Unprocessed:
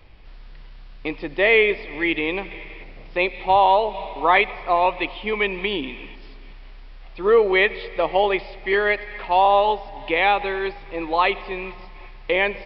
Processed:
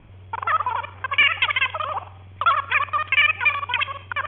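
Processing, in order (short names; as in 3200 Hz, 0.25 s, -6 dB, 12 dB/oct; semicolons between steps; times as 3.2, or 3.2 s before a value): local time reversal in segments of 0.14 s; wide varispeed 2.96×; rippled Chebyshev low-pass 3400 Hz, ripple 6 dB; gain +3 dB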